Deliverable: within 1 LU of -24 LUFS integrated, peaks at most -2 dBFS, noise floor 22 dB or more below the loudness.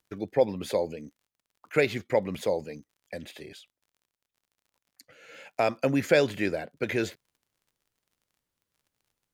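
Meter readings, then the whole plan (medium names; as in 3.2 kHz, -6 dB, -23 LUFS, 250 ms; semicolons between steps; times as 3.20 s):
tick rate 32 per s; loudness -28.0 LUFS; peak level -8.5 dBFS; loudness target -24.0 LUFS
-> de-click; trim +4 dB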